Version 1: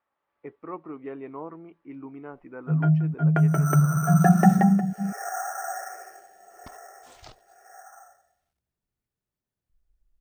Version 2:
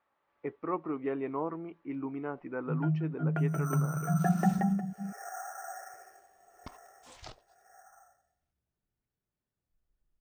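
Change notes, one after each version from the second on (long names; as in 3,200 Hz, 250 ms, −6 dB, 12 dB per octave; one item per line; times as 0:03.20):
speech +3.5 dB
first sound −10.0 dB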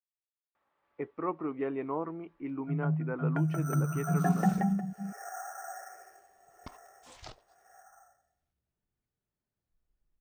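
speech: entry +0.55 s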